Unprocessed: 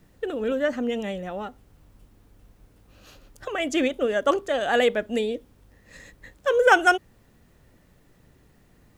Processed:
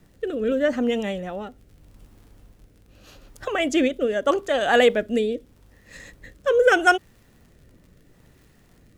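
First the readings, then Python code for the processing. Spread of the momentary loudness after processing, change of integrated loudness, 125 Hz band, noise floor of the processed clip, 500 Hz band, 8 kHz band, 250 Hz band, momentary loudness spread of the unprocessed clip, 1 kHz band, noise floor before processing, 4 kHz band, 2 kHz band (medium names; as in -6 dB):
15 LU, +2.0 dB, no reading, -56 dBFS, +2.5 dB, +1.5 dB, +3.5 dB, 15 LU, 0.0 dB, -59 dBFS, +2.0 dB, +1.0 dB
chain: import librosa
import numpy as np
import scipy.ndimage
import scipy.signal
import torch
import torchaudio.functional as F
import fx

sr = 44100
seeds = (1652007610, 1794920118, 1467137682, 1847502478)

y = fx.rotary(x, sr, hz=0.8)
y = fx.dmg_crackle(y, sr, seeds[0], per_s=55.0, level_db=-50.0)
y = F.gain(torch.from_numpy(y), 4.5).numpy()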